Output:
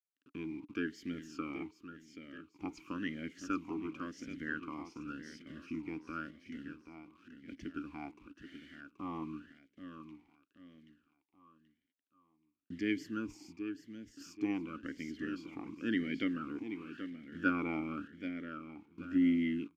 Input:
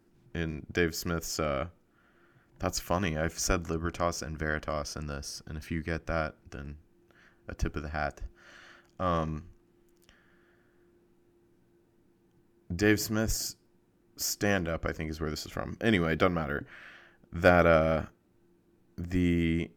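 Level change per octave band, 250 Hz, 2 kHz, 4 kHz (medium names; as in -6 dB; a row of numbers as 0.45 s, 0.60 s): -3.0 dB, -9.5 dB, -13.0 dB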